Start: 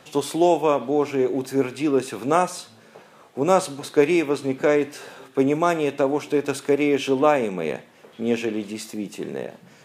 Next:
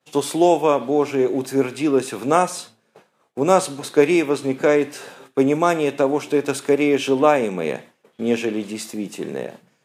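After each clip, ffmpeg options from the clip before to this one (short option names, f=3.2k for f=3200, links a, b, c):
-af "agate=range=-33dB:threshold=-38dB:ratio=3:detection=peak,highpass=90,equalizer=f=9.1k:w=1.4:g=2.5,volume=2.5dB"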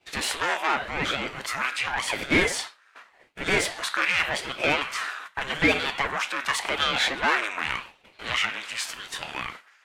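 -filter_complex "[0:a]asplit=2[a][b];[b]highpass=f=720:p=1,volume=23dB,asoftclip=type=tanh:threshold=-1dB[c];[a][c]amix=inputs=2:normalize=0,lowpass=f=2.9k:p=1,volume=-6dB,highpass=f=1.4k:t=q:w=1.9,aeval=exprs='val(0)*sin(2*PI*540*n/s+540*0.8/0.87*sin(2*PI*0.87*n/s))':c=same,volume=-6dB"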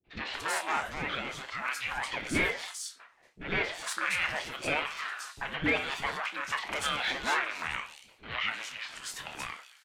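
-filter_complex "[0:a]asplit=2[a][b];[b]adelay=27,volume=-12dB[c];[a][c]amix=inputs=2:normalize=0,acrossover=split=390|4100[d][e][f];[e]adelay=40[g];[f]adelay=270[h];[d][g][h]amix=inputs=3:normalize=0,volume=-6dB"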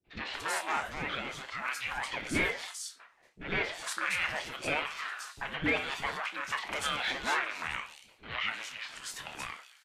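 -af "volume=-1dB" -ar 32000 -c:a libmp3lame -b:a 96k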